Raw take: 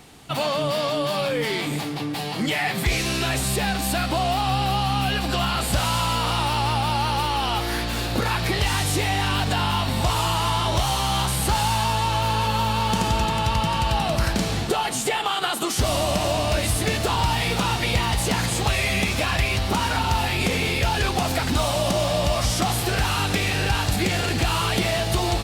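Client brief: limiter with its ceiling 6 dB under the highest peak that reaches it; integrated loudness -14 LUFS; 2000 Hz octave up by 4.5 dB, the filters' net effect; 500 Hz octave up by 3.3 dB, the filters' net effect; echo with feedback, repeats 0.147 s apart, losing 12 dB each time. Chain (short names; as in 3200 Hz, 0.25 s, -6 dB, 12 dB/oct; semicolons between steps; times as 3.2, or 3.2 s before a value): bell 500 Hz +4 dB; bell 2000 Hz +5.5 dB; limiter -12.5 dBFS; feedback echo 0.147 s, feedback 25%, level -12 dB; gain +7.5 dB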